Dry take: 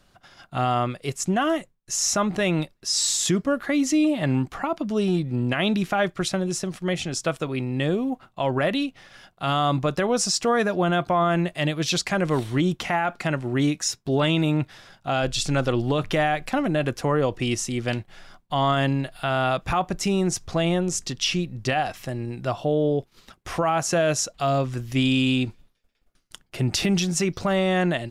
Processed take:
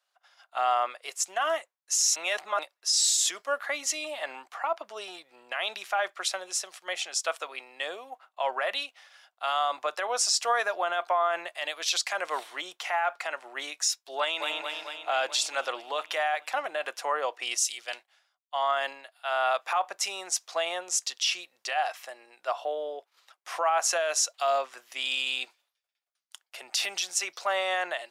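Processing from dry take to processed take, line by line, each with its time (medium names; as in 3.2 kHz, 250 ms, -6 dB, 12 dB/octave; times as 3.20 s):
2.16–2.59 s: reverse
14.18–14.61 s: echo throw 220 ms, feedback 70%, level -5.5 dB
17.57–19.54 s: three bands expanded up and down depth 100%
whole clip: high-pass 650 Hz 24 dB/octave; peak limiter -17.5 dBFS; three bands expanded up and down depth 40%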